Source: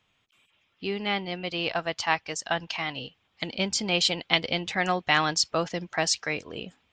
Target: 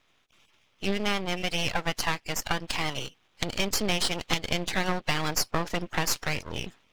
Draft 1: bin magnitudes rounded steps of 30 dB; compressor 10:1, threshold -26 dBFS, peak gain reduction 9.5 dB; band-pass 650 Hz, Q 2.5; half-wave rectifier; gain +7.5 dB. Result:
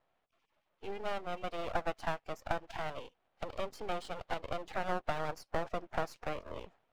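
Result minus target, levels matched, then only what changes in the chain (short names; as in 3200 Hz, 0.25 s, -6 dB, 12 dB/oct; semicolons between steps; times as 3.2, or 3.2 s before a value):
500 Hz band +6.0 dB
remove: band-pass 650 Hz, Q 2.5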